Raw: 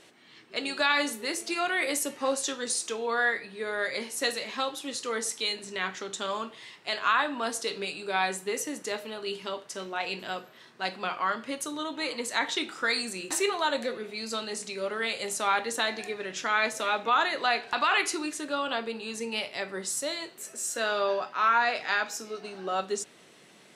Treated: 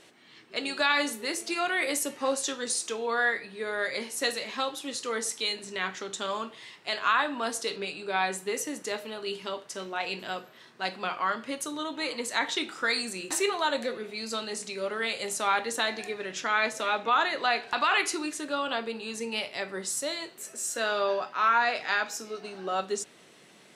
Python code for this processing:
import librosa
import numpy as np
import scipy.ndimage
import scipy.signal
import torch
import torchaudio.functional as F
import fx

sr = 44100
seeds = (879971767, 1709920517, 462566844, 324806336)

y = fx.high_shelf(x, sr, hz=7100.0, db=-9.0, at=(7.76, 8.33))
y = fx.high_shelf(y, sr, hz=11000.0, db=-8.0, at=(16.4, 17.56))